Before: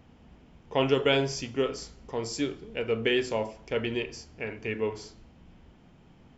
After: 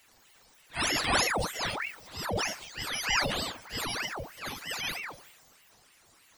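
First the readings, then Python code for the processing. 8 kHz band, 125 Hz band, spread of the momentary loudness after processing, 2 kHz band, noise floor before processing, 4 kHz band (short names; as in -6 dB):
n/a, -4.5 dB, 12 LU, +3.5 dB, -57 dBFS, +3.0 dB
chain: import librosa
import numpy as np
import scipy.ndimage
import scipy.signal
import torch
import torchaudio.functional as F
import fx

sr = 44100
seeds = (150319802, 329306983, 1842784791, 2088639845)

y = fx.octave_mirror(x, sr, pivot_hz=1100.0)
y = fx.transient(y, sr, attack_db=-8, sustain_db=6)
y = fx.ring_lfo(y, sr, carrier_hz=1400.0, swing_pct=80, hz=3.2)
y = y * 10.0 ** (4.0 / 20.0)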